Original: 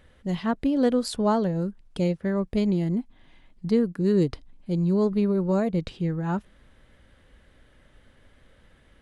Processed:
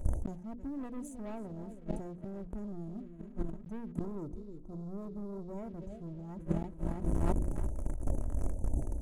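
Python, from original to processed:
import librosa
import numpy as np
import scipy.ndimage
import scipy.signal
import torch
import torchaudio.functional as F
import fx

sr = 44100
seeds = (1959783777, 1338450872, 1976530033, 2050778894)

y = fx.brickwall_bandstop(x, sr, low_hz=920.0, high_hz=5900.0)
y = fx.echo_feedback(y, sr, ms=321, feedback_pct=46, wet_db=-14.0)
y = fx.leveller(y, sr, passes=3)
y = fx.low_shelf(y, sr, hz=180.0, db=12.0)
y = fx.hum_notches(y, sr, base_hz=60, count=9)
y = y + 0.37 * np.pad(y, (int(3.1 * sr / 1000.0), 0))[:len(y)]
y = fx.gate_flip(y, sr, shuts_db=-15.0, range_db=-41)
y = fx.over_compress(y, sr, threshold_db=-38.0, ratio=-0.5)
y = fx.spec_box(y, sr, start_s=4.05, length_s=1.53, low_hz=1400.0, high_hz=3500.0, gain_db=-10)
y = fx.sustainer(y, sr, db_per_s=90.0)
y = y * librosa.db_to_amplitude(7.5)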